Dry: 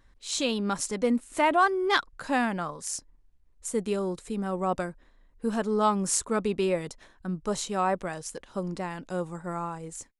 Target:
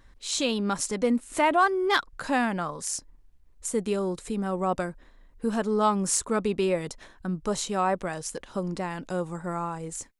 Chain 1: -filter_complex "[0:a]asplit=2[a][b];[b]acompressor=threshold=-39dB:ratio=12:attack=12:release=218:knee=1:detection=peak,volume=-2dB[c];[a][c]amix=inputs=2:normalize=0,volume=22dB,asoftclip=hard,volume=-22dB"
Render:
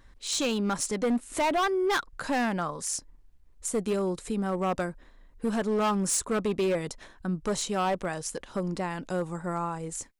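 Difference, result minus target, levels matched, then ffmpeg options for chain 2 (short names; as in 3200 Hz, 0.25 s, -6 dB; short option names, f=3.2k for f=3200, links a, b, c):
overloaded stage: distortion +23 dB
-filter_complex "[0:a]asplit=2[a][b];[b]acompressor=threshold=-39dB:ratio=12:attack=12:release=218:knee=1:detection=peak,volume=-2dB[c];[a][c]amix=inputs=2:normalize=0,volume=12dB,asoftclip=hard,volume=-12dB"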